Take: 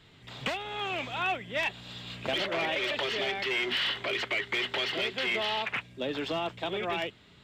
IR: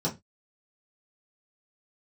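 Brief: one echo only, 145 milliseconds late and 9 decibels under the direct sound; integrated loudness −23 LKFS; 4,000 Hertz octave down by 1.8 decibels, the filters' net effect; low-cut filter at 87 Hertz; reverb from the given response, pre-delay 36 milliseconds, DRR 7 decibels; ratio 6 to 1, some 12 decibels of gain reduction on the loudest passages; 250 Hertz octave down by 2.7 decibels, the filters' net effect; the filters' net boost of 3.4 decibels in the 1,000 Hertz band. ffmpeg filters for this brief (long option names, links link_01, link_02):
-filter_complex "[0:a]highpass=87,equalizer=frequency=250:width_type=o:gain=-4.5,equalizer=frequency=1000:width_type=o:gain=5,equalizer=frequency=4000:width_type=o:gain=-3,acompressor=threshold=-39dB:ratio=6,aecho=1:1:145:0.355,asplit=2[link_01][link_02];[1:a]atrim=start_sample=2205,adelay=36[link_03];[link_02][link_03]afir=irnorm=-1:irlink=0,volume=-15dB[link_04];[link_01][link_04]amix=inputs=2:normalize=0,volume=16.5dB"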